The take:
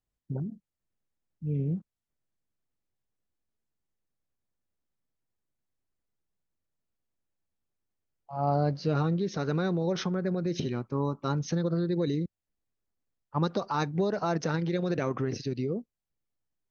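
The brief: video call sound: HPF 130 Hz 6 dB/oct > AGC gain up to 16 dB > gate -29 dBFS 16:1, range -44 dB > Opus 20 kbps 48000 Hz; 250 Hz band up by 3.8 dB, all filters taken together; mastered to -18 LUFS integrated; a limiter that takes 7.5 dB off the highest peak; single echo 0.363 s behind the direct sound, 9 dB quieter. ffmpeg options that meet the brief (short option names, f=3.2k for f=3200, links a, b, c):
-af "equalizer=f=250:t=o:g=8,alimiter=limit=-19.5dB:level=0:latency=1,highpass=f=130:p=1,aecho=1:1:363:0.355,dynaudnorm=m=16dB,agate=range=-44dB:threshold=-29dB:ratio=16,volume=6.5dB" -ar 48000 -c:a libopus -b:a 20k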